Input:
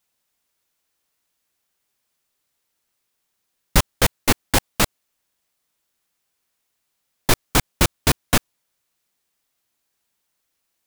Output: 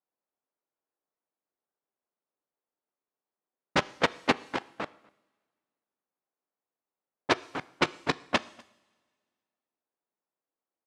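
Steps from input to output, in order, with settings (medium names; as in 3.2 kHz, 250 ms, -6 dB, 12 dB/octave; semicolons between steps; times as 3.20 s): treble shelf 8.5 kHz -4.5 dB; level held to a coarse grid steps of 14 dB; high-pass 260 Hz 12 dB/octave; level-controlled noise filter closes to 910 Hz, open at -17.5 dBFS; echo from a far wall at 42 m, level -28 dB; two-slope reverb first 0.72 s, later 1.9 s, from -17 dB, DRR 17.5 dB; low-pass that closes with the level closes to 2.6 kHz, closed at -19 dBFS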